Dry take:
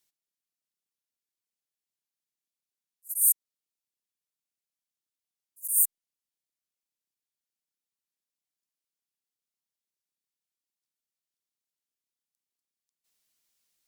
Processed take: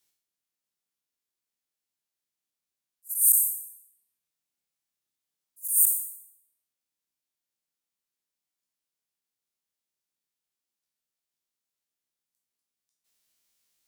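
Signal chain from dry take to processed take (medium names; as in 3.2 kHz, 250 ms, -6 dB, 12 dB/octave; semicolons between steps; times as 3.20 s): spectral sustain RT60 0.70 s; 3.30–5.64 s: flutter echo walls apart 5.3 m, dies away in 0.39 s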